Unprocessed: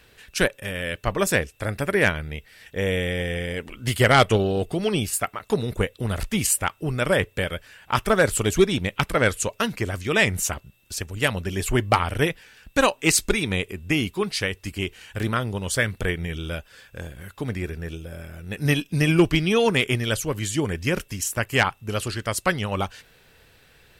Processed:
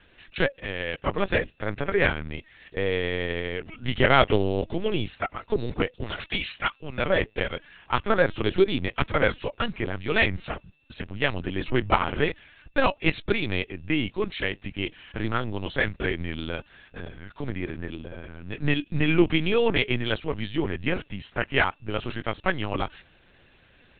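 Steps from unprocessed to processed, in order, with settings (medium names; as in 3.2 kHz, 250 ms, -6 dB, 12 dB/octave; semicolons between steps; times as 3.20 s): 6.04–6.98 s: tilt EQ +3.5 dB/octave; LPC vocoder at 8 kHz pitch kept; trim -2 dB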